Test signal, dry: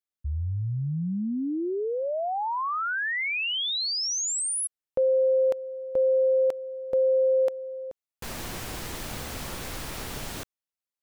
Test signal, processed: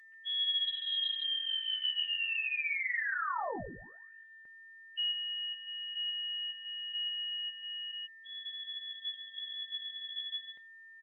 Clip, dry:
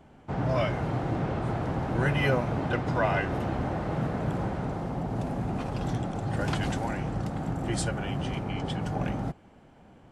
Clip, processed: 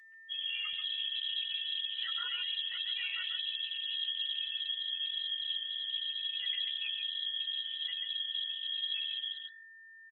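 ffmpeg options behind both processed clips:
ffmpeg -i in.wav -filter_complex "[0:a]afftfilt=real='re*gte(hypot(re,im),0.126)':imag='im*gte(hypot(re,im),0.126)':win_size=1024:overlap=0.75,adynamicequalizer=threshold=0.00631:dfrequency=270:dqfactor=1.7:tfrequency=270:tqfactor=1.7:attack=5:release=100:ratio=0.375:range=3:mode=cutabove:tftype=bell,areverse,acompressor=threshold=-35dB:ratio=10:attack=0.17:release=21:knee=6:detection=rms,areverse,afreqshift=-20,aeval=exprs='val(0)+0.00316*sin(2*PI*1600*n/s)':channel_layout=same,asplit=2[link_01][link_02];[link_02]adelay=14,volume=-3dB[link_03];[link_01][link_03]amix=inputs=2:normalize=0,asplit=2[link_04][link_05];[link_05]adelay=139.9,volume=-6dB,highshelf=frequency=4000:gain=-3.15[link_06];[link_04][link_06]amix=inputs=2:normalize=0,lowpass=frequency=2900:width_type=q:width=0.5098,lowpass=frequency=2900:width_type=q:width=0.6013,lowpass=frequency=2900:width_type=q:width=0.9,lowpass=frequency=2900:width_type=q:width=2.563,afreqshift=-3400" -ar 48000 -c:a libopus -b:a 16k out.opus

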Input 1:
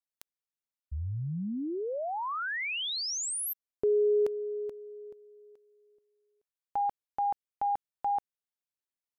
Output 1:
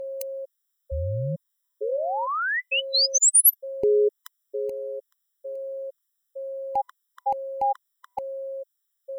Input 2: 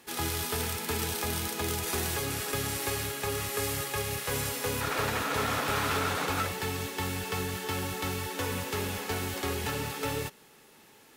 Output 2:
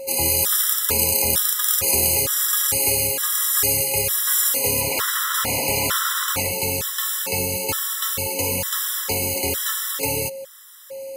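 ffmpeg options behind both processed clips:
ffmpeg -i in.wav -af "aeval=exprs='val(0)+0.0158*sin(2*PI*540*n/s)':channel_layout=same,crystalizer=i=3.5:c=0,afftfilt=real='re*gt(sin(2*PI*1.1*pts/sr)*(1-2*mod(floor(b*sr/1024/1000),2)),0)':imag='im*gt(sin(2*PI*1.1*pts/sr)*(1-2*mod(floor(b*sr/1024/1000),2)),0)':win_size=1024:overlap=0.75,volume=5.5dB" out.wav

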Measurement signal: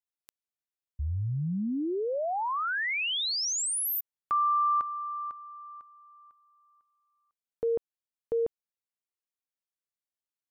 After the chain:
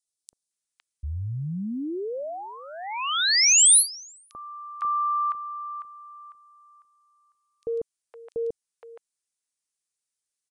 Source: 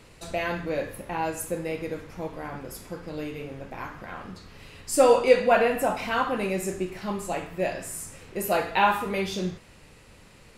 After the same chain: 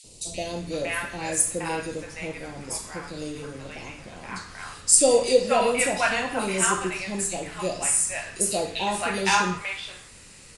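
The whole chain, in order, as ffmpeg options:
ffmpeg -i in.wav -filter_complex "[0:a]acrossover=split=760|3200[link_01][link_02][link_03];[link_01]adelay=40[link_04];[link_02]adelay=510[link_05];[link_04][link_05][link_03]amix=inputs=3:normalize=0,crystalizer=i=4.5:c=0,aresample=22050,aresample=44100" out.wav

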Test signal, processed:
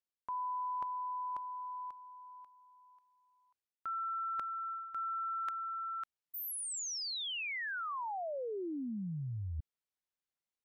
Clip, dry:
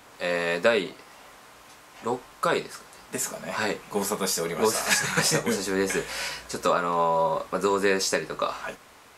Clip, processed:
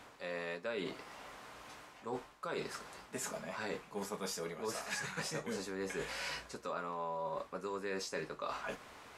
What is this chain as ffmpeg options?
ffmpeg -i in.wav -af "highshelf=frequency=7600:gain=-10,areverse,acompressor=threshold=-36dB:ratio=6,areverse,volume=-2dB" out.wav

